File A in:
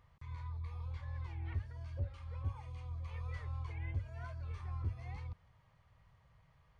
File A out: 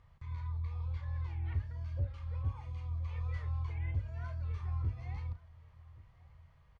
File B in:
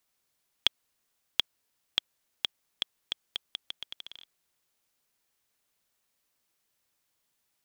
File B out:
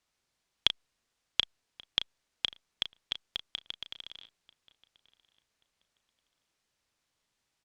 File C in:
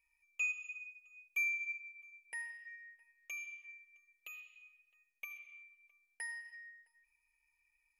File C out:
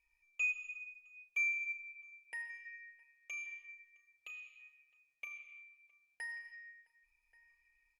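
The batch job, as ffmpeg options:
-filter_complex "[0:a]lowpass=6.9k,lowshelf=f=82:g=7.5,asplit=2[a][b];[b]adelay=35,volume=-11dB[c];[a][c]amix=inputs=2:normalize=0,asplit=2[d][e];[e]adelay=1132,lowpass=f=3k:p=1,volume=-22dB,asplit=2[f][g];[g]adelay=1132,lowpass=f=3k:p=1,volume=0.28[h];[f][h]amix=inputs=2:normalize=0[i];[d][i]amix=inputs=2:normalize=0" -ar 48000 -c:a libopus -b:a 256k

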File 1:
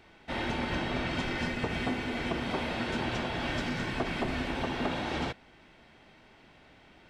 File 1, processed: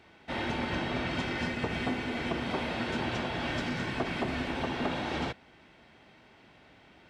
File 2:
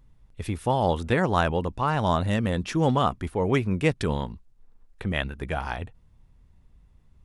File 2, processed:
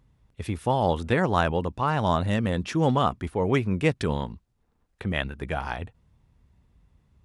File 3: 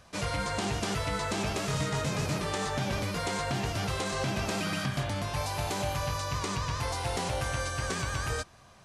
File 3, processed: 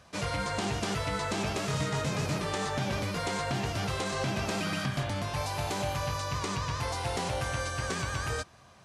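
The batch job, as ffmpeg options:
-af "highpass=56,highshelf=f=9.4k:g=-4.5"

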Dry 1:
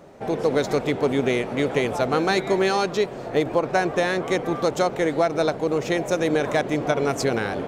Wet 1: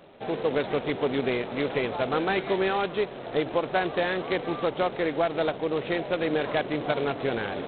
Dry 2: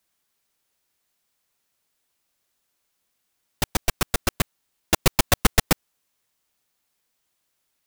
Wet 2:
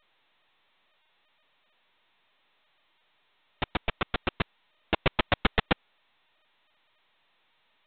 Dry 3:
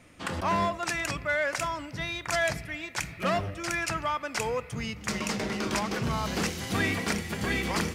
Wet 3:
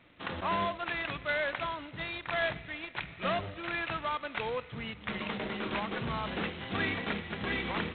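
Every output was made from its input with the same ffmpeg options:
-af "lowshelf=f=180:g=-5,volume=-4dB" -ar 8000 -c:a adpcm_g726 -b:a 16k

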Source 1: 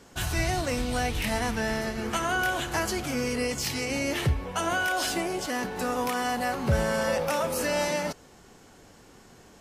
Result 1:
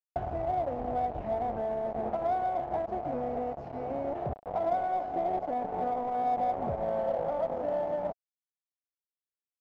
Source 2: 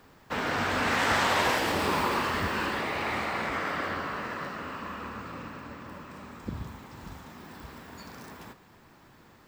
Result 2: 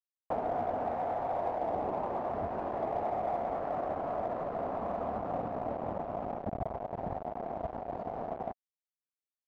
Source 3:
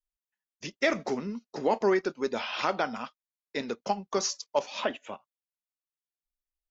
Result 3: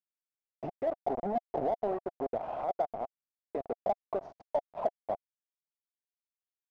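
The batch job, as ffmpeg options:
-filter_complex "[0:a]highpass=42,acompressor=threshold=-39dB:ratio=20,aresample=16000,asoftclip=type=tanh:threshold=-36.5dB,aresample=44100,acrusher=bits=6:mix=0:aa=0.000001,lowpass=f=700:t=q:w=6.3,asplit=2[a][b];[b]asoftclip=type=hard:threshold=-39.5dB,volume=-11dB[c];[a][c]amix=inputs=2:normalize=0,volume=4dB"

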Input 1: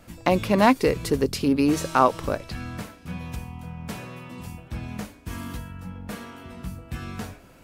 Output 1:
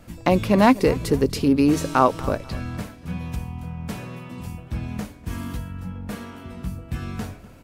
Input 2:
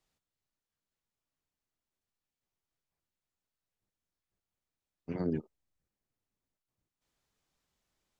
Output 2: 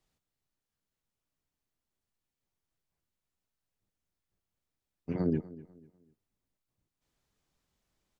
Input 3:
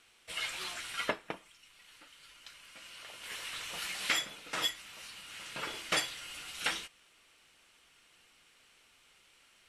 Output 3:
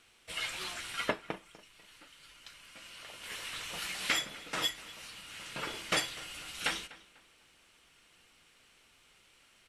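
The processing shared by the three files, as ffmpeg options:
-filter_complex "[0:a]lowshelf=f=380:g=5,asplit=2[a][b];[b]adelay=247,lowpass=f=3.3k:p=1,volume=-18.5dB,asplit=2[c][d];[d]adelay=247,lowpass=f=3.3k:p=1,volume=0.33,asplit=2[e][f];[f]adelay=247,lowpass=f=3.3k:p=1,volume=0.33[g];[a][c][e][g]amix=inputs=4:normalize=0"

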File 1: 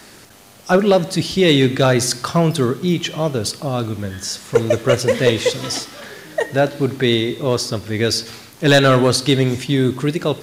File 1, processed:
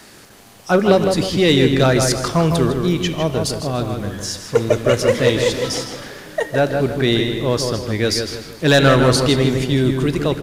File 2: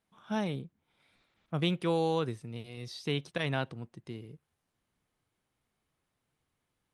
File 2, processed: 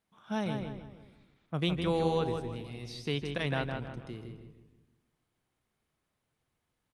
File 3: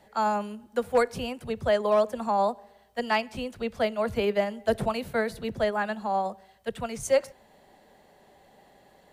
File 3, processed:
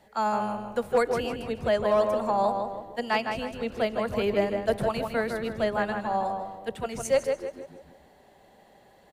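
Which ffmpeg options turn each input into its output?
-filter_complex "[0:a]asplit=2[a][b];[b]adelay=159,lowpass=f=2.8k:p=1,volume=-5dB,asplit=2[c][d];[d]adelay=159,lowpass=f=2.8k:p=1,volume=0.41,asplit=2[e][f];[f]adelay=159,lowpass=f=2.8k:p=1,volume=0.41,asplit=2[g][h];[h]adelay=159,lowpass=f=2.8k:p=1,volume=0.41,asplit=2[i][j];[j]adelay=159,lowpass=f=2.8k:p=1,volume=0.41[k];[c][e][g][i][k]amix=inputs=5:normalize=0[l];[a][l]amix=inputs=2:normalize=0,aeval=exprs='0.944*(cos(1*acos(clip(val(0)/0.944,-1,1)))-cos(1*PI/2))+0.00841*(cos(6*acos(clip(val(0)/0.944,-1,1)))-cos(6*PI/2))':c=same,asplit=2[m][n];[n]asplit=5[o][p][q][r][s];[o]adelay=144,afreqshift=-93,volume=-17dB[t];[p]adelay=288,afreqshift=-186,volume=-22.5dB[u];[q]adelay=432,afreqshift=-279,volume=-28dB[v];[r]adelay=576,afreqshift=-372,volume=-33.5dB[w];[s]adelay=720,afreqshift=-465,volume=-39.1dB[x];[t][u][v][w][x]amix=inputs=5:normalize=0[y];[m][y]amix=inputs=2:normalize=0,volume=-1dB"

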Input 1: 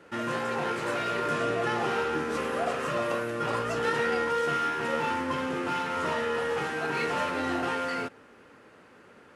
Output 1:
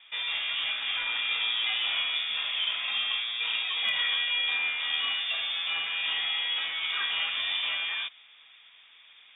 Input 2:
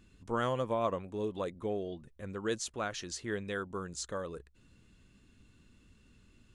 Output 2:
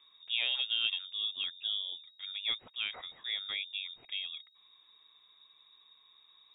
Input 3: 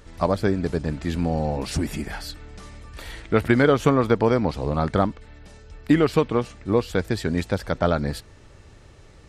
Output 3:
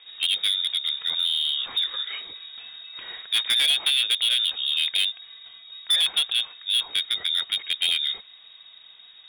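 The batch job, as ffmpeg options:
-af "lowpass=f=3.2k:t=q:w=0.5098,lowpass=f=3.2k:t=q:w=0.6013,lowpass=f=3.2k:t=q:w=0.9,lowpass=f=3.2k:t=q:w=2.563,afreqshift=-3800,aeval=exprs='0.668*(cos(1*acos(clip(val(0)/0.668,-1,1)))-cos(1*PI/2))+0.0188*(cos(3*acos(clip(val(0)/0.668,-1,1)))-cos(3*PI/2))':c=same,volume=17dB,asoftclip=hard,volume=-17dB"

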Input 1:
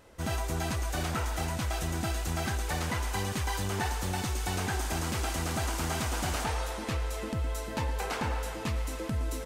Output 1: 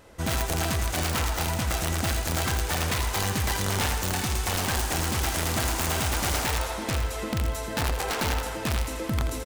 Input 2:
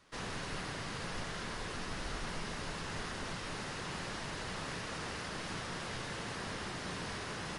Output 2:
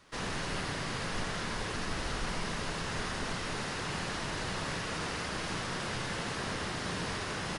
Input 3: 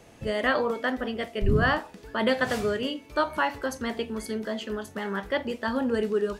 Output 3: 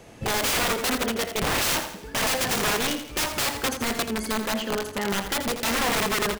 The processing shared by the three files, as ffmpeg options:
-af "aeval=exprs='(mod(15.8*val(0)+1,2)-1)/15.8':c=same,aecho=1:1:83|166|249|332|415:0.335|0.144|0.0619|0.0266|0.0115,volume=4.5dB"

